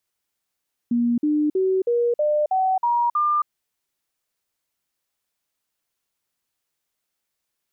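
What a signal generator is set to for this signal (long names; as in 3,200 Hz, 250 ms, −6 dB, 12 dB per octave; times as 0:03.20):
stepped sweep 238 Hz up, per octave 3, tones 8, 0.27 s, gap 0.05 s −17 dBFS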